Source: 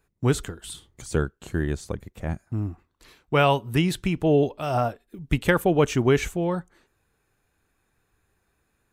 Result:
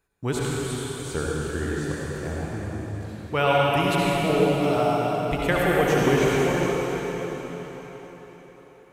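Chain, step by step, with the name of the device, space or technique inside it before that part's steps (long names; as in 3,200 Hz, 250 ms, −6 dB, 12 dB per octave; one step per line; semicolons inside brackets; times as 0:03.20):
low-shelf EQ 290 Hz −4.5 dB
cathedral (convolution reverb RT60 4.8 s, pre-delay 58 ms, DRR −5.5 dB)
level −3.5 dB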